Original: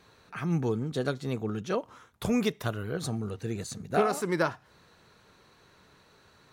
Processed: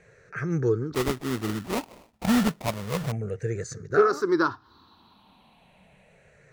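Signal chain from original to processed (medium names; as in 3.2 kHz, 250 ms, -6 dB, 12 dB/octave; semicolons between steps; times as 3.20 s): drifting ripple filter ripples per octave 0.52, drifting -0.31 Hz, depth 18 dB; treble shelf 5.2 kHz -10 dB; 0.94–3.12 s: sample-rate reducer 1.6 kHz, jitter 20%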